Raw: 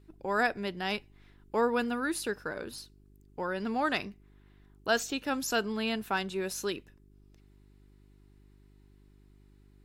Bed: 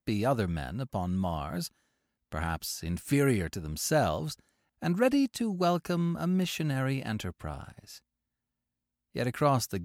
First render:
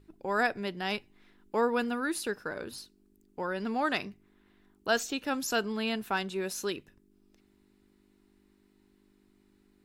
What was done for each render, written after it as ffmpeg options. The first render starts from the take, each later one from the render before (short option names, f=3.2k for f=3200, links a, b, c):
-af "bandreject=f=50:t=h:w=4,bandreject=f=100:t=h:w=4,bandreject=f=150:t=h:w=4"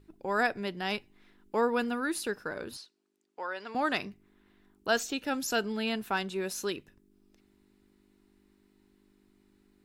-filter_complex "[0:a]asettb=1/sr,asplit=3[a][b][c];[a]atrim=end=2.774[d];[b]atrim=start=2.77:end=3.75,asetpts=PTS-STARTPTS,afade=t=in:d=0.004:c=qsin,afade=t=out:st=0.976:d=0.004:c=qsin,highpass=610,lowpass=6.6k[e];[c]atrim=start=3.746[f];[d][e]acrossfade=d=0.004:c1=hsin:c2=qsin[g];[g][f]acrossfade=d=0.004:c1=qsin:c2=hsin,asettb=1/sr,asplit=3[h][i][j];[h]atrim=end=5.144[k];[i]atrim=start=5.14:end=5.87,asetpts=PTS-STARTPTS,afade=t=in:d=0.004:c=qsin,afade=t=out:st=0.726:d=0.004:c=qsin,bandreject=f=1.1k:w=7.1[l];[j]atrim=start=5.866[m];[k][l]acrossfade=d=0.004:c1=hsin:c2=qsin[n];[n][m]acrossfade=d=0.004:c1=qsin:c2=hsin"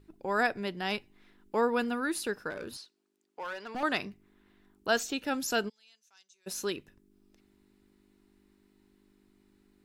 -filter_complex "[0:a]asettb=1/sr,asplit=3[a][b][c];[a]atrim=end=2.504[d];[b]atrim=start=2.5:end=3.83,asetpts=PTS-STARTPTS,afade=t=in:d=0.004:c=qsin,afade=t=out:st=1.326:d=0.004:c=qsin,volume=33dB,asoftclip=hard,volume=-33dB[e];[c]atrim=start=3.826[f];[d][e]acrossfade=d=0.004:c1=hsin:c2=qsin[g];[g][f]acrossfade=d=0.004:c1=qsin:c2=hsin,asplit=3[h][i][j];[h]afade=t=out:st=5.68:d=0.02[k];[i]bandpass=f=6.2k:t=q:w=11,afade=t=in:st=5.68:d=0.02,afade=t=out:st=6.46:d=0.02[l];[j]afade=t=in:st=6.46:d=0.02[m];[k][l][m]amix=inputs=3:normalize=0"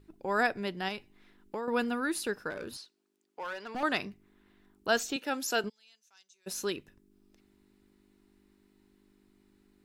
-filter_complex "[0:a]asettb=1/sr,asplit=3[a][b][c];[a]atrim=end=0.884[d];[b]atrim=start=0.88:end=1.68,asetpts=PTS-STARTPTS,afade=t=in:d=0.004:c=qsin,afade=t=out:st=0.796:d=0.004:c=qsin,acompressor=threshold=-32dB:ratio=6:attack=3.2:release=140:knee=1:detection=peak[e];[c]atrim=start=1.676[f];[d][e]acrossfade=d=0.004:c1=hsin:c2=qsin[g];[g][f]acrossfade=d=0.004:c1=qsin:c2=hsin,asettb=1/sr,asplit=3[h][i][j];[h]atrim=end=5.164[k];[i]atrim=start=5.16:end=5.64,asetpts=PTS-STARTPTS,afade=t=in:d=0.004:c=qsin,afade=t=out:st=0.476:d=0.004:c=qsin,highpass=290[l];[j]atrim=start=5.636[m];[k][l]acrossfade=d=0.004:c1=hsin:c2=qsin[n];[n][m]acrossfade=d=0.004:c1=qsin:c2=hsin"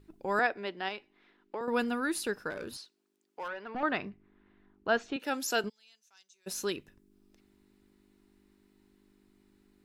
-filter_complex "[0:a]asettb=1/sr,asplit=3[a][b][c];[a]atrim=end=0.394[d];[b]atrim=start=0.39:end=1.61,asetpts=PTS-STARTPTS,afade=t=in:d=0.004:c=qsin,afade=t=out:st=1.216:d=0.004:c=qsin,acrossover=split=260 4700:gain=0.126 1 0.112[e][f][g];[e][f][g]amix=inputs=3:normalize=0[h];[c]atrim=start=1.606[i];[d][h]acrossfade=d=0.004:c1=hsin:c2=qsin[j];[j][i]acrossfade=d=0.004:c1=qsin:c2=hsin,asettb=1/sr,asplit=3[k][l][m];[k]atrim=end=3.484[n];[l]atrim=start=3.48:end=5.2,asetpts=PTS-STARTPTS,afade=t=in:d=0.004:c=qsin,afade=t=out:st=1.716:d=0.004:c=qsin,lowpass=2.4k[o];[m]atrim=start=5.196[p];[n][o]acrossfade=d=0.004:c1=hsin:c2=qsin[q];[q][p]acrossfade=d=0.004:c1=qsin:c2=hsin"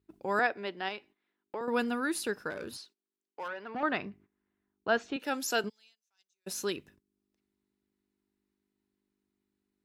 -af "agate=range=-17dB:threshold=-57dB:ratio=16:detection=peak,highpass=56"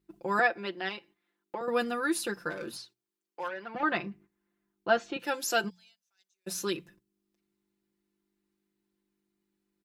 -af "bandreject=f=60:t=h:w=6,bandreject=f=120:t=h:w=6,bandreject=f=180:t=h:w=6,aecho=1:1:5.8:0.79"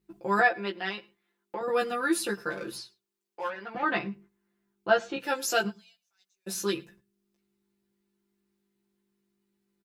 -filter_complex "[0:a]asplit=2[a][b];[b]adelay=15,volume=-2.5dB[c];[a][c]amix=inputs=2:normalize=0,asplit=2[d][e];[e]adelay=105,volume=-24dB,highshelf=f=4k:g=-2.36[f];[d][f]amix=inputs=2:normalize=0"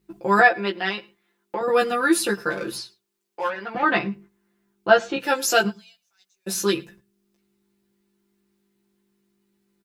-af "volume=7.5dB"